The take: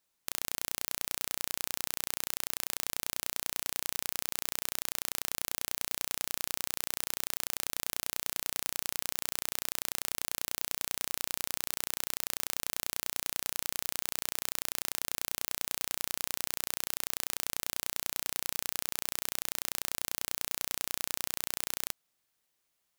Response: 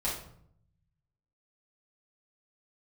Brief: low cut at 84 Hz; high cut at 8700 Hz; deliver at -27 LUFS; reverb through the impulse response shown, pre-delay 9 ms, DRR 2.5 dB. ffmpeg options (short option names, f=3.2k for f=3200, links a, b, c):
-filter_complex "[0:a]highpass=84,lowpass=8.7k,asplit=2[a][b];[1:a]atrim=start_sample=2205,adelay=9[c];[b][c]afir=irnorm=-1:irlink=0,volume=-8.5dB[d];[a][d]amix=inputs=2:normalize=0,volume=10dB"